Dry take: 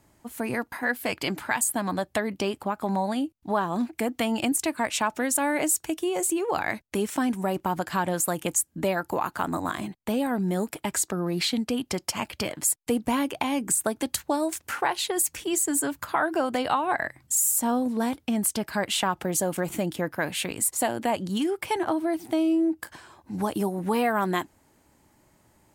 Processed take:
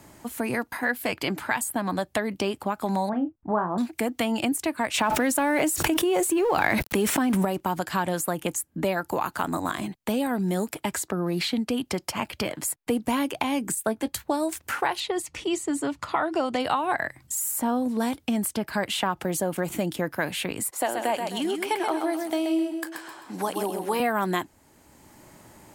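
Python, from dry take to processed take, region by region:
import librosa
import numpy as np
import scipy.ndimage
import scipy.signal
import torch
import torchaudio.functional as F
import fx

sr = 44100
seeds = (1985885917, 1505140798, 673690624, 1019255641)

y = fx.chain(x, sr, fx.lowpass(hz=1500.0, slope=24),
    fx.doubler(ms=33.0, db=-8.5), at=(3.09, 3.78))
y = fx.chain(y, sr, fx.law_mismatch(coded='mu'),
    fx.env_flatten(amount_pct=100), at=(4.94, 7.45))
y = fx.chain(y, sr, fx.doubler(ms=18.0, db=-12.5),
    fx.band_widen(depth_pct=70), at=(13.75, 14.24))
y = fx.chain(y, sr, fx.lowpass(hz=5900.0, slope=12),
    fx.notch(hz=1600.0, q=6.7), at=(15.0, 16.6))
y = fx.chain(y, sr, fx.highpass(hz=350.0, slope=12),
    fx.echo_feedback(ms=130, feedback_pct=33, wet_db=-6), at=(20.7, 24.0))
y = fx.dynamic_eq(y, sr, hz=7100.0, q=0.98, threshold_db=-40.0, ratio=4.0, max_db=-5)
y = fx.band_squash(y, sr, depth_pct=40)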